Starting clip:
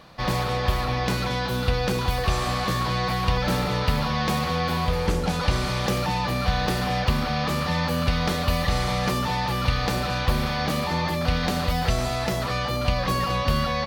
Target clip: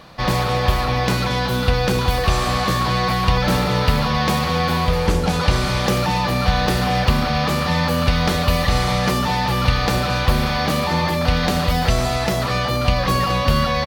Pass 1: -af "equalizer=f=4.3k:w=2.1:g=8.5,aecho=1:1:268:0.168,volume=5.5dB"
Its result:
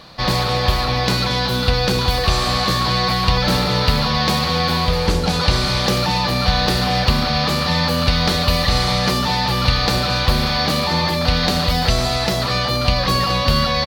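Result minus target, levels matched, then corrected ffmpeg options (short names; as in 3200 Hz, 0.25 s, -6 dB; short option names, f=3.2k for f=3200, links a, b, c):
4000 Hz band +4.5 dB
-af "aecho=1:1:268:0.168,volume=5.5dB"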